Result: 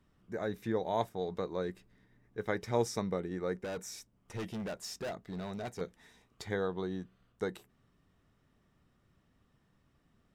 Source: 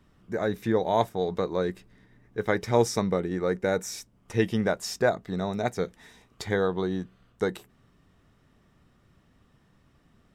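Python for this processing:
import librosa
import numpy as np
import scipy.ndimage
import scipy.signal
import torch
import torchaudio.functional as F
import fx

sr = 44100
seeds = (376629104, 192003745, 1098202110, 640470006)

y = fx.overload_stage(x, sr, gain_db=27.0, at=(3.64, 5.81))
y = F.gain(torch.from_numpy(y), -8.5).numpy()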